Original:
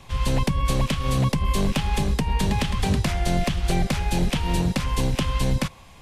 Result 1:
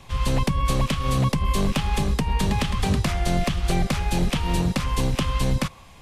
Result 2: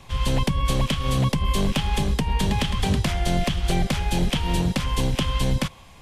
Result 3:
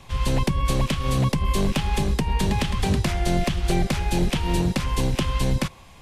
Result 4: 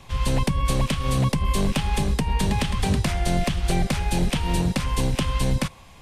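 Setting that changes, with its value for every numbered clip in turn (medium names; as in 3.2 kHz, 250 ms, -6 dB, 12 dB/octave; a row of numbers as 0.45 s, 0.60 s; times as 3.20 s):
dynamic bell, frequency: 1.2 kHz, 3.2 kHz, 360 Hz, 8.8 kHz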